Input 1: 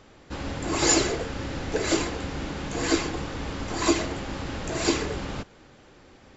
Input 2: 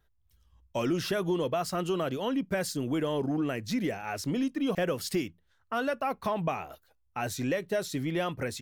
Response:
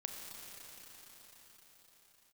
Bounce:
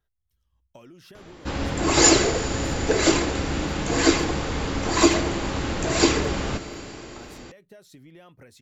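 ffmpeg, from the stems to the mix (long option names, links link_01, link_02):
-filter_complex "[0:a]adelay=1150,volume=2.5dB,asplit=2[link_01][link_02];[link_02]volume=-5dB[link_03];[1:a]acompressor=threshold=-37dB:ratio=10,volume=-8.5dB[link_04];[2:a]atrim=start_sample=2205[link_05];[link_03][link_05]afir=irnorm=-1:irlink=0[link_06];[link_01][link_04][link_06]amix=inputs=3:normalize=0"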